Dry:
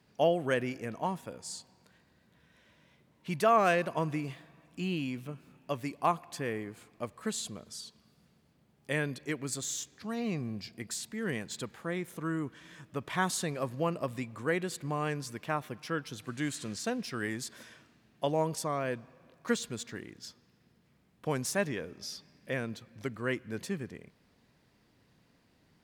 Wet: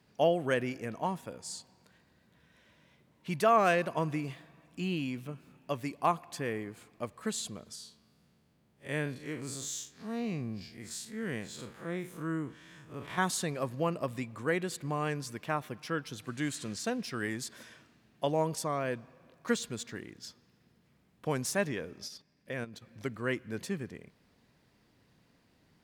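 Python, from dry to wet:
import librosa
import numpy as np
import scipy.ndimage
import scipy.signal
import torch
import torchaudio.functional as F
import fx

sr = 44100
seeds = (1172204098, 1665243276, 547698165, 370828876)

y = fx.spec_blur(x, sr, span_ms=94.0, at=(7.75, 13.18))
y = fx.level_steps(y, sr, step_db=12, at=(22.07, 22.81), fade=0.02)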